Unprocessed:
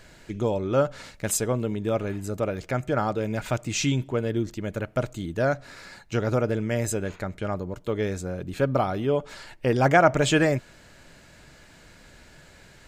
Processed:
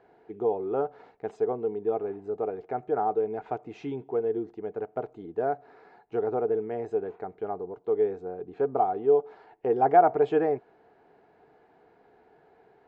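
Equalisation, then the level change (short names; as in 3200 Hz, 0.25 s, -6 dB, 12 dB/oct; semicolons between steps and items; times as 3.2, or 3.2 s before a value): double band-pass 570 Hz, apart 0.75 oct; air absorption 140 m; +6.0 dB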